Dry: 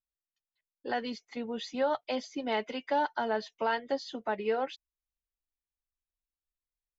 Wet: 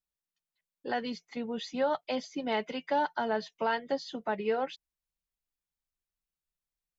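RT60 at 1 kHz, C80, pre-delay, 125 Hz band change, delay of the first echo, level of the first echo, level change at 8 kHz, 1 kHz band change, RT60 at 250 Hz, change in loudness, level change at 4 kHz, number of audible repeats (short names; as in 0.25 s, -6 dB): none, none, none, n/a, none, none, n/a, 0.0 dB, none, 0.0 dB, 0.0 dB, none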